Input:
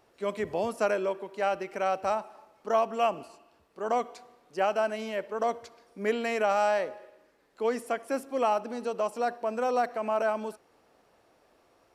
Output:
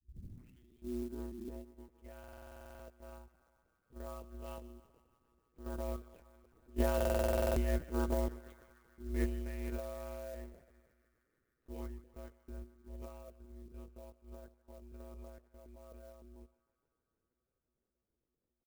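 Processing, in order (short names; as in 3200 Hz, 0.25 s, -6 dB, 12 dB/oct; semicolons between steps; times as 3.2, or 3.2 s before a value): tape start at the beginning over 1.37 s; Doppler pass-by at 4.73, 17 m/s, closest 4.4 m; resonant low shelf 510 Hz +11.5 dB, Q 1.5; tempo 0.64×; monotone LPC vocoder at 8 kHz 300 Hz; narrowing echo 0.153 s, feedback 83%, band-pass 1500 Hz, level -15.5 dB; ring modulator 60 Hz; stuck buffer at 2.19/6.96, samples 2048, times 12; clock jitter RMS 0.042 ms; gain -1 dB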